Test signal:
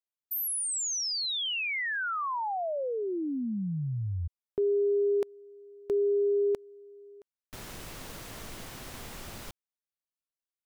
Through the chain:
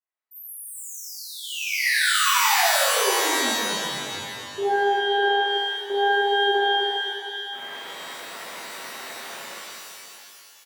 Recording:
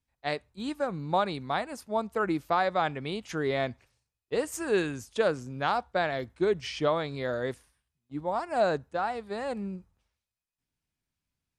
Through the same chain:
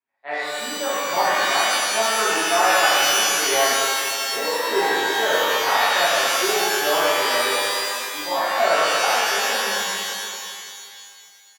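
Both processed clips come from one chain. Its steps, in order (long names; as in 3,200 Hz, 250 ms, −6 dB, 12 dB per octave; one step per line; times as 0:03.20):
high-pass filter 430 Hz 12 dB per octave
high shelf with overshoot 2,900 Hz −12 dB, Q 1.5
flanger 1.1 Hz, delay 2.4 ms, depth 4.8 ms, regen −79%
on a send: single-tap delay 571 ms −16 dB
on the sum: reverb with rising layers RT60 2.2 s, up +12 semitones, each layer −2 dB, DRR −11.5 dB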